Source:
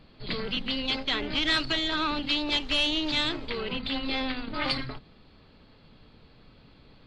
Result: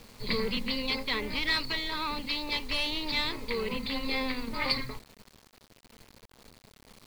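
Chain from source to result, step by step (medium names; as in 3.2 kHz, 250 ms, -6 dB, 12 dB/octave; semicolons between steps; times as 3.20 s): rippled EQ curve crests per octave 0.91, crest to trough 10 dB; gain riding 2 s; modulation noise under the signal 31 dB; bit crusher 8-bit; trim -3.5 dB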